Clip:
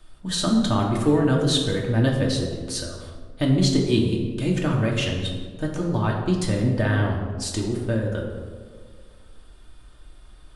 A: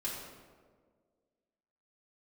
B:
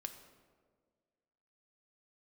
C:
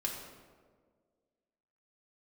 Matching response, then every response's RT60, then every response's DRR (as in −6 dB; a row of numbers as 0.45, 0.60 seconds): C; 1.7, 1.7, 1.7 seconds; −7.0, 6.0, −1.5 decibels